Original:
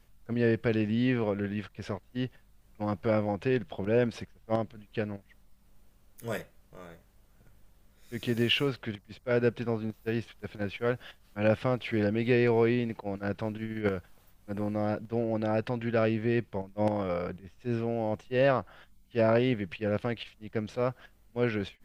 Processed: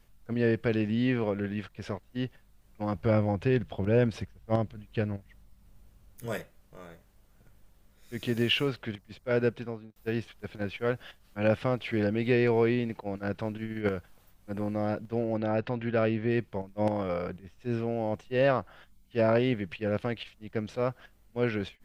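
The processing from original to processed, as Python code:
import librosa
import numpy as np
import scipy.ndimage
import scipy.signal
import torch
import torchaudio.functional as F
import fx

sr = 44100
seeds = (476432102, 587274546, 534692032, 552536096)

y = fx.peak_eq(x, sr, hz=72.0, db=9.0, octaves=2.1, at=(2.95, 6.26))
y = fx.lowpass(y, sr, hz=4500.0, slope=12, at=(15.37, 16.31))
y = fx.edit(y, sr, fx.fade_out_span(start_s=9.43, length_s=0.53), tone=tone)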